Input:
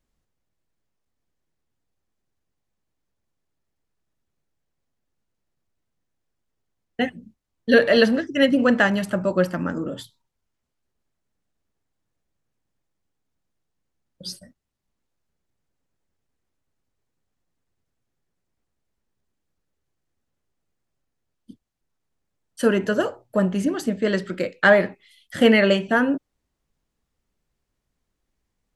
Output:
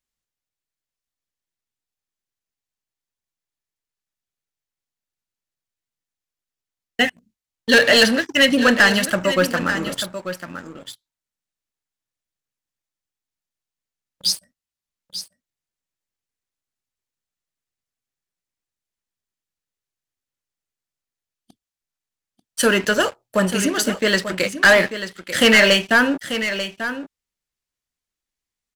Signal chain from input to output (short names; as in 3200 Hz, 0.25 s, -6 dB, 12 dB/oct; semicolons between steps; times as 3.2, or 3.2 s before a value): tilt shelf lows -8 dB, about 1200 Hz; sample leveller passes 3; echo 0.89 s -10.5 dB; gain -3.5 dB